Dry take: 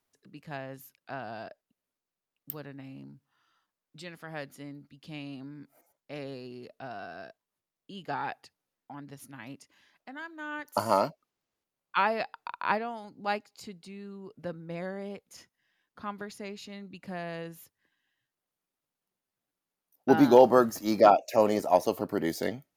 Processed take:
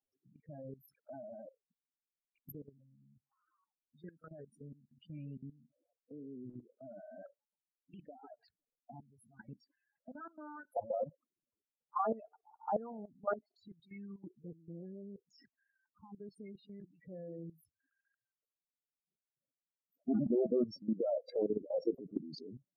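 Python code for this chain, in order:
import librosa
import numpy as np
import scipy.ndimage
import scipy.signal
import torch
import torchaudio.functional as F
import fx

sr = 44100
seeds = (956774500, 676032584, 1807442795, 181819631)

y = fx.spec_topn(x, sr, count=8)
y = fx.low_shelf(y, sr, hz=470.0, db=-10.0)
y = fx.level_steps(y, sr, step_db=17)
y = fx.formant_shift(y, sr, semitones=-3)
y = fx.rotary(y, sr, hz=0.75)
y = y * librosa.db_to_amplitude(6.0)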